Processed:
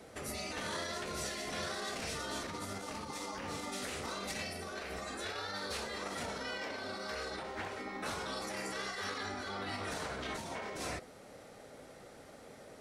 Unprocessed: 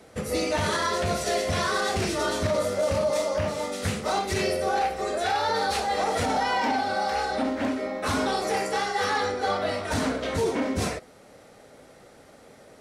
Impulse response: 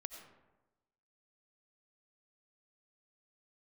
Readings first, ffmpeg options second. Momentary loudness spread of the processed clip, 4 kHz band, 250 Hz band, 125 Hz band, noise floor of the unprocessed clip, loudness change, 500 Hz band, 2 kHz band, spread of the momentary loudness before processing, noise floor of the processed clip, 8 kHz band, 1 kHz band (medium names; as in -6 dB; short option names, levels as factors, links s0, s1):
15 LU, -9.5 dB, -14.5 dB, -15.5 dB, -52 dBFS, -13.5 dB, -16.5 dB, -10.5 dB, 3 LU, -54 dBFS, -9.0 dB, -16.0 dB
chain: -af "alimiter=level_in=1.12:limit=0.0631:level=0:latency=1:release=87,volume=0.891,afftfilt=real='re*lt(hypot(re,im),0.0891)':imag='im*lt(hypot(re,im),0.0891)':win_size=1024:overlap=0.75,volume=0.75"